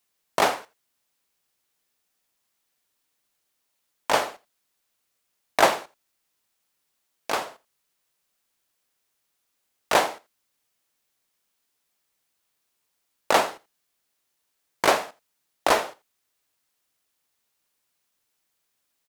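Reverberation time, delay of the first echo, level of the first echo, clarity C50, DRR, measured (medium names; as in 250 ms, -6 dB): no reverb, 84 ms, -21.0 dB, no reverb, no reverb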